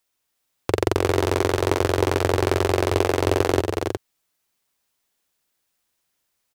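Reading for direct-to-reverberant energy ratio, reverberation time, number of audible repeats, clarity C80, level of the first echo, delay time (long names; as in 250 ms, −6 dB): no reverb audible, no reverb audible, 2, no reverb audible, −6.5 dB, 289 ms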